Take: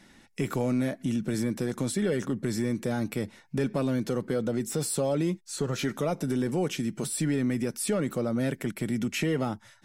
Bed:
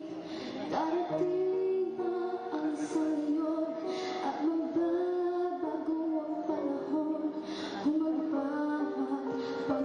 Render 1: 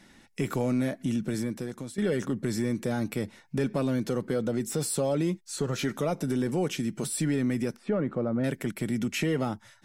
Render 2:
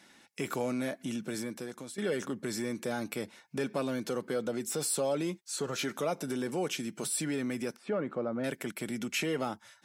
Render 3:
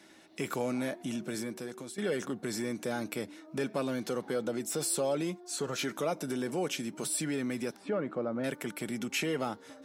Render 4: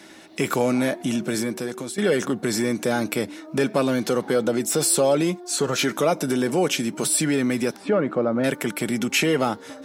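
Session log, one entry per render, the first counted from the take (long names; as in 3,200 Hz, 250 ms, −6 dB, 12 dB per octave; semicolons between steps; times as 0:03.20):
0:01.20–0:01.98: fade out, to −13 dB; 0:07.76–0:08.44: low-pass filter 1,600 Hz
high-pass filter 500 Hz 6 dB per octave; notch filter 1,900 Hz, Q 17
mix in bed −21 dB
level +11.5 dB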